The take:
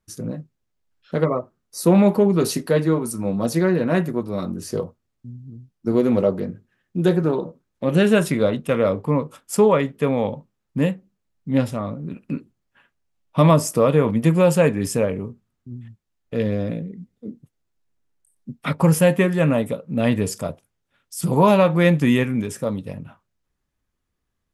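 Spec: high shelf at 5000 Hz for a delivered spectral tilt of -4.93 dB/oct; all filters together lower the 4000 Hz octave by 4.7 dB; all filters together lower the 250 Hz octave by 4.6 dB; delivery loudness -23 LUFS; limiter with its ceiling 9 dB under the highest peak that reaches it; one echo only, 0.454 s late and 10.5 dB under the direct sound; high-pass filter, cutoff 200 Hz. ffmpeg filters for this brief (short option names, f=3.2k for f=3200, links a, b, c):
-af "highpass=200,equalizer=f=250:t=o:g=-3,equalizer=f=4k:t=o:g=-4,highshelf=f=5k:g=-5,alimiter=limit=-12.5dB:level=0:latency=1,aecho=1:1:454:0.299,volume=2.5dB"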